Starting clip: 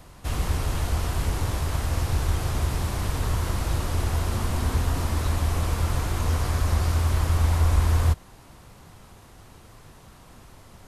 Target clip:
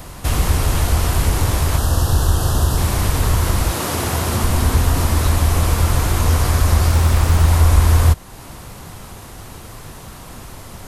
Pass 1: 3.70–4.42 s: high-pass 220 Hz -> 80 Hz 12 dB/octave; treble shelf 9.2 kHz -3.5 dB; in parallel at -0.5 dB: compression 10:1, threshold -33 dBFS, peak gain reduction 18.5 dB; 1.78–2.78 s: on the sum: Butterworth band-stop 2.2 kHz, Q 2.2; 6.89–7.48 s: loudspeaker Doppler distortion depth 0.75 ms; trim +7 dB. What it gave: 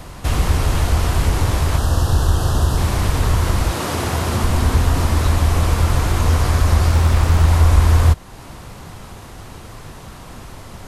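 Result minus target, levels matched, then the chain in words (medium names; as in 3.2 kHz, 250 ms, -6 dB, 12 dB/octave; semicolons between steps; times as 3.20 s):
8 kHz band -4.0 dB
3.70–4.42 s: high-pass 220 Hz -> 80 Hz 12 dB/octave; treble shelf 9.2 kHz +7.5 dB; in parallel at -0.5 dB: compression 10:1, threshold -33 dBFS, peak gain reduction 18.5 dB; 1.78–2.78 s: on the sum: Butterworth band-stop 2.2 kHz, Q 2.2; 6.89–7.48 s: loudspeaker Doppler distortion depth 0.75 ms; trim +7 dB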